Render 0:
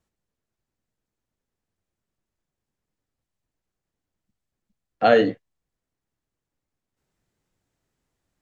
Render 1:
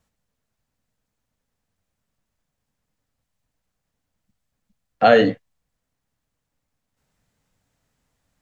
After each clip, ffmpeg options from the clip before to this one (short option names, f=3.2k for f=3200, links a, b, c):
-filter_complex "[0:a]equalizer=f=360:w=5.1:g=-12.5,asplit=2[a][b];[b]alimiter=limit=-14dB:level=0:latency=1,volume=-1.5dB[c];[a][c]amix=inputs=2:normalize=0,volume=1dB"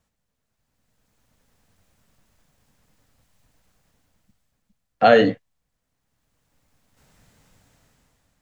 -af "dynaudnorm=f=290:g=7:m=15dB,volume=-1dB"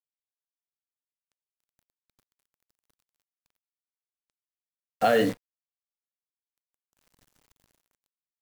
-af "alimiter=limit=-6dB:level=0:latency=1,acrusher=bits=6:dc=4:mix=0:aa=0.000001,volume=-6dB"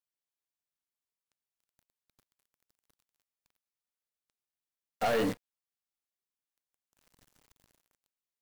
-af "aeval=exprs='(tanh(17.8*val(0)+0.25)-tanh(0.25))/17.8':c=same"